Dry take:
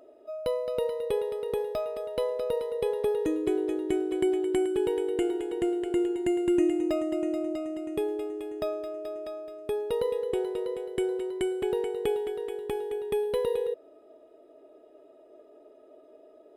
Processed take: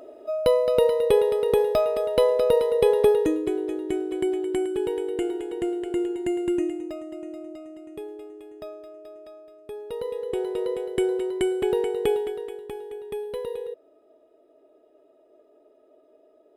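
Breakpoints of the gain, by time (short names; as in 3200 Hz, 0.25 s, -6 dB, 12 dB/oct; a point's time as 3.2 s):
3.06 s +9.5 dB
3.51 s +0.5 dB
6.48 s +0.5 dB
6.94 s -7.5 dB
9.69 s -7.5 dB
10.66 s +5 dB
12.14 s +5 dB
12.7 s -4 dB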